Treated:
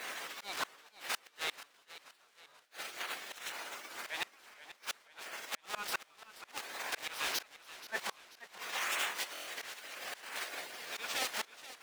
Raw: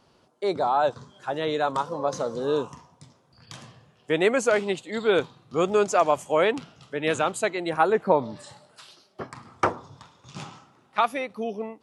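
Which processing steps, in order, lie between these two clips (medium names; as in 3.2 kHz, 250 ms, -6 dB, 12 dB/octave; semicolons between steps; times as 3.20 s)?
zero-crossing glitches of -15 dBFS; spectral gate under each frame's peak -15 dB weak; treble shelf 8 kHz -5.5 dB; pre-echo 52 ms -20 dB; in parallel at -11 dB: sample-rate reducer 1.3 kHz, jitter 0%; on the sum: high-pass 780 Hz 6 dB/octave; overdrive pedal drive 19 dB, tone 2.3 kHz, clips at -7 dBFS; slow attack 359 ms; inverted gate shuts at -21 dBFS, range -36 dB; buffer glitch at 9.33 s, samples 1024, times 5; modulated delay 482 ms, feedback 45%, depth 116 cents, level -15 dB; trim -2 dB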